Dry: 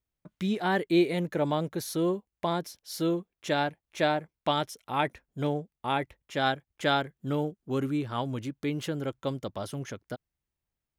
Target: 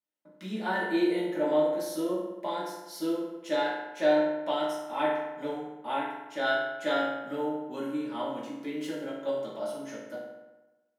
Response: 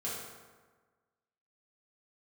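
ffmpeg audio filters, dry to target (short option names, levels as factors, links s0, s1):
-filter_complex "[0:a]highpass=f=230:w=0.5412,highpass=f=230:w=1.3066[s0];[1:a]atrim=start_sample=2205,asetrate=57330,aresample=44100[s1];[s0][s1]afir=irnorm=-1:irlink=0,volume=0.708"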